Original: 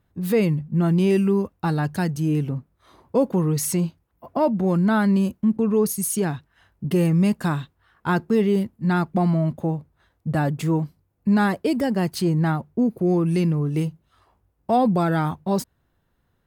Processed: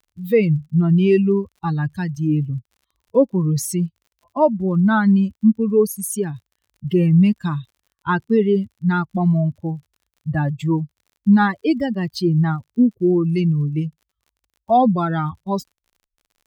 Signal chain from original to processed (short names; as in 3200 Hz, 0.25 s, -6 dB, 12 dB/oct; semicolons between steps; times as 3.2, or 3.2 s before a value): per-bin expansion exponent 2; high shelf 6100 Hz -7 dB; crackle 49/s -53 dBFS; gain +7.5 dB